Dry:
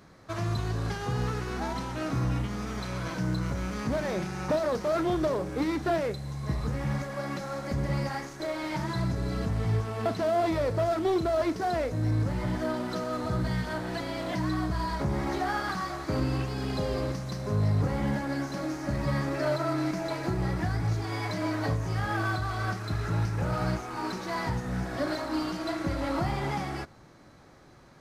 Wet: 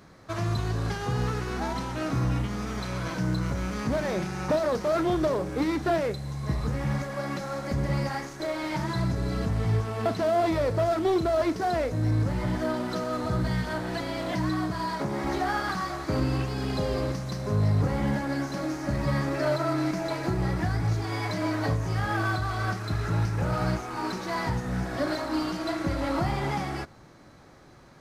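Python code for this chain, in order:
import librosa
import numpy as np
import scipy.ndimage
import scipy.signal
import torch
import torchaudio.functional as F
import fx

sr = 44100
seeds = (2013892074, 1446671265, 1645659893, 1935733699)

y = fx.highpass(x, sr, hz=fx.line((14.49, 95.0), (15.23, 210.0)), slope=12, at=(14.49, 15.23), fade=0.02)
y = F.gain(torch.from_numpy(y), 2.0).numpy()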